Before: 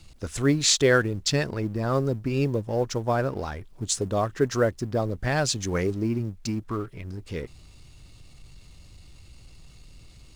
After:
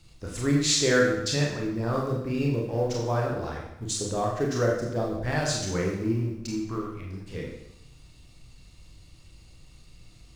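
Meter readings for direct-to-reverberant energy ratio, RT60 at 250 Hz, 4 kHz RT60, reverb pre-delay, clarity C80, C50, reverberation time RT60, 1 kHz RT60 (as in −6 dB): −2.5 dB, 0.85 s, 0.80 s, 28 ms, 5.5 dB, 3.0 dB, 0.80 s, 0.80 s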